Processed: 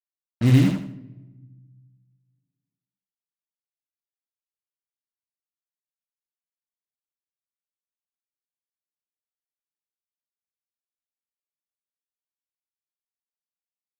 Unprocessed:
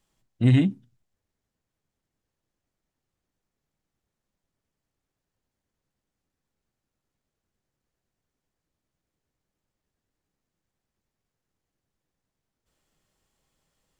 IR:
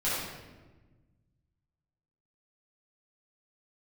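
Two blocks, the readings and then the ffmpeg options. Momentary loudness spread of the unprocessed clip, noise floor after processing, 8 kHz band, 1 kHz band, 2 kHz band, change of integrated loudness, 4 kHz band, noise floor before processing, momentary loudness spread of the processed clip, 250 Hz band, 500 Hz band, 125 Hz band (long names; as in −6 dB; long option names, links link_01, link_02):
6 LU, below −85 dBFS, +12.5 dB, +7.0 dB, +3.0 dB, +2.0 dB, +3.5 dB, below −85 dBFS, 16 LU, +2.5 dB, +2.5 dB, +3.0 dB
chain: -filter_complex "[0:a]acrusher=bits=4:mix=0:aa=0.5,aecho=1:1:78|156|234|312:0.631|0.202|0.0646|0.0207,asplit=2[link_01][link_02];[1:a]atrim=start_sample=2205[link_03];[link_02][link_03]afir=irnorm=-1:irlink=0,volume=-26.5dB[link_04];[link_01][link_04]amix=inputs=2:normalize=0"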